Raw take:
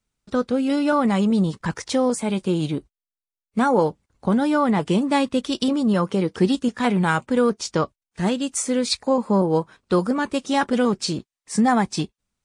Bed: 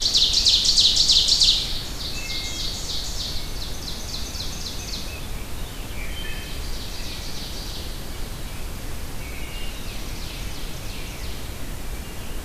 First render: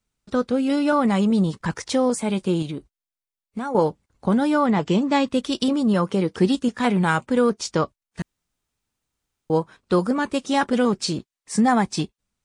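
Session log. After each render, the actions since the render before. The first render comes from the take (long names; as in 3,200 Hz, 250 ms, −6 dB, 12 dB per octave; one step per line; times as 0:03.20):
0:02.62–0:03.75: downward compressor 4 to 1, threshold −26 dBFS
0:04.66–0:05.28: Butterworth low-pass 7,800 Hz 72 dB per octave
0:08.22–0:09.50: fill with room tone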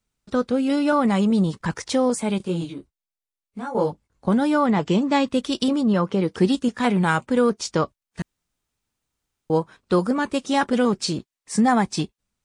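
0:02.38–0:04.28: micro pitch shift up and down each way 22 cents
0:05.81–0:06.23: high-frequency loss of the air 78 metres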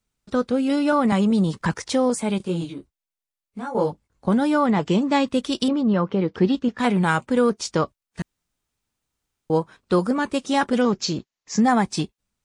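0:01.12–0:01.74: multiband upward and downward compressor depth 70%
0:05.68–0:06.79: high-frequency loss of the air 170 metres
0:10.81–0:11.61: bad sample-rate conversion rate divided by 3×, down none, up filtered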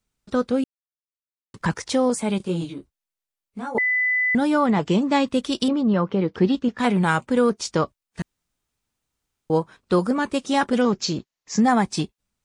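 0:00.64–0:01.54: silence
0:03.78–0:04.35: beep over 2,000 Hz −18 dBFS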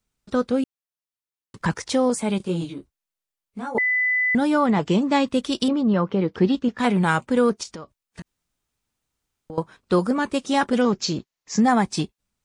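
0:07.63–0:09.58: downward compressor 10 to 1, threshold −33 dBFS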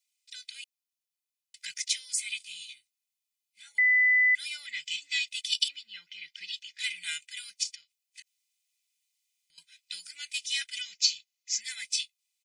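elliptic high-pass filter 2,200 Hz, stop band 50 dB
comb filter 2 ms, depth 93%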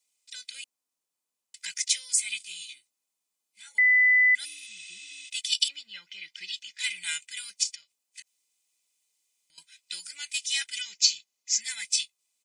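0:04.47–0:05.27: healed spectral selection 390–9,000 Hz after
graphic EQ with 10 bands 250 Hz +9 dB, 500 Hz +7 dB, 1,000 Hz +9 dB, 8,000 Hz +7 dB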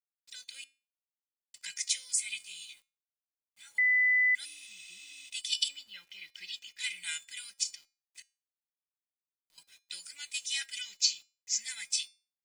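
bit-depth reduction 10 bits, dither none
tuned comb filter 270 Hz, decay 0.34 s, harmonics all, mix 50%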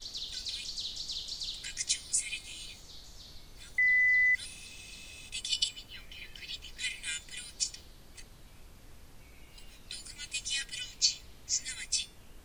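mix in bed −22 dB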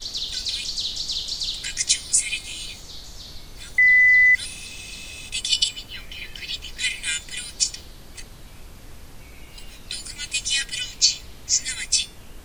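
level +11 dB
brickwall limiter −2 dBFS, peak gain reduction 2.5 dB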